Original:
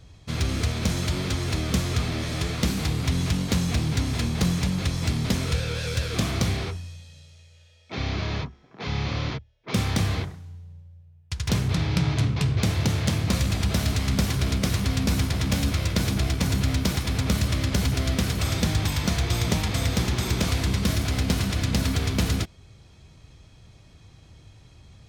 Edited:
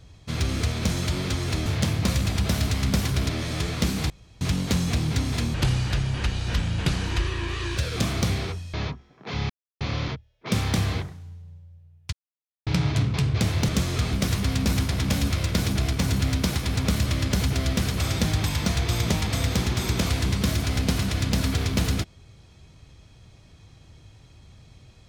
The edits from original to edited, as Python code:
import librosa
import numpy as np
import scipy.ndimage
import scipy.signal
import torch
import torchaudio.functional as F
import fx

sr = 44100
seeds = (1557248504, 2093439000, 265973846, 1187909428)

y = fx.edit(x, sr, fx.swap(start_s=1.66, length_s=0.44, other_s=12.91, other_length_s=1.63),
    fx.room_tone_fill(start_s=2.91, length_s=0.31),
    fx.speed_span(start_s=4.35, length_s=1.61, speed=0.72),
    fx.cut(start_s=6.92, length_s=1.35),
    fx.insert_silence(at_s=9.03, length_s=0.31),
    fx.silence(start_s=11.35, length_s=0.54), tone=tone)